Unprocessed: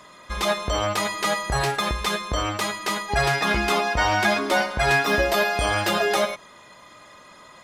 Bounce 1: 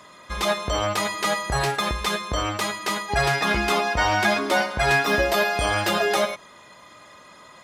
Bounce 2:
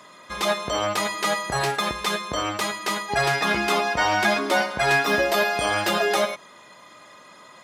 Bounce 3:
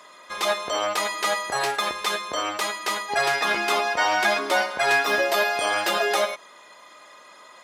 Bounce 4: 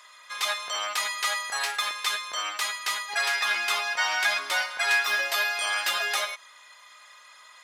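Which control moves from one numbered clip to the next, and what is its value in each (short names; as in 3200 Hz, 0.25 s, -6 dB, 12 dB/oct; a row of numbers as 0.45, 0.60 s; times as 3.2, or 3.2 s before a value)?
HPF, cutoff: 42, 140, 390, 1400 Hz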